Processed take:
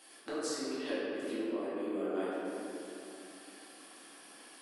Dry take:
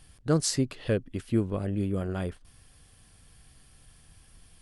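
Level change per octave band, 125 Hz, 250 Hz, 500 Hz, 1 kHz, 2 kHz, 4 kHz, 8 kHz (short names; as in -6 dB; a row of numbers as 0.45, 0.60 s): under -25 dB, -7.5 dB, -4.0 dB, -1.5 dB, -1.5 dB, -6.5 dB, -10.0 dB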